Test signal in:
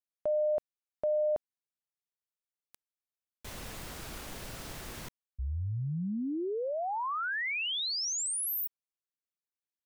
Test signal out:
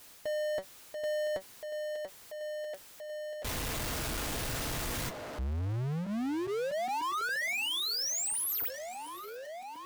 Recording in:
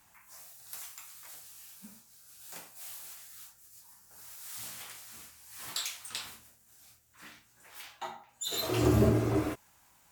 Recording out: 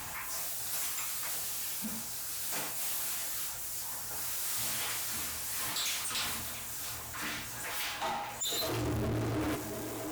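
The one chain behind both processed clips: reverse; compression, threshold -38 dBFS; reverse; comb of notches 190 Hz; band-passed feedback delay 686 ms, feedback 61%, band-pass 620 Hz, level -15 dB; power-law waveshaper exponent 0.35

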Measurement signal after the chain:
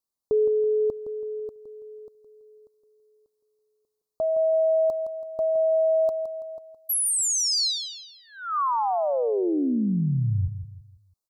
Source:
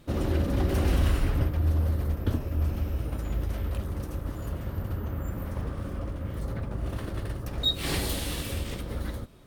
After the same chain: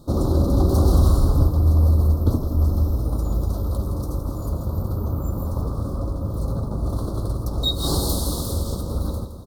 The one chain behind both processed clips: Chebyshev band-stop 1.2–4.1 kHz, order 3; feedback delay 165 ms, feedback 37%, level -10 dB; trim +7.5 dB

